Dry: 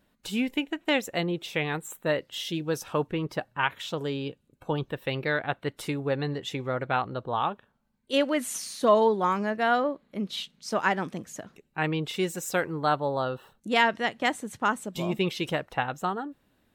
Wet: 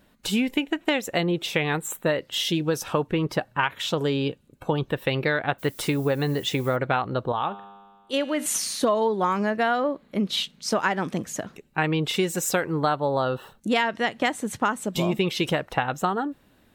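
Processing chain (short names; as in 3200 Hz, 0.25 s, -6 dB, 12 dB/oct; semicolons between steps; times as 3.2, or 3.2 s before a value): 5.58–6.75 added noise violet -55 dBFS; 7.32–8.46 resonator 100 Hz, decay 1.7 s, harmonics all, mix 60%; compressor 6:1, threshold -28 dBFS, peak gain reduction 12.5 dB; gain +8.5 dB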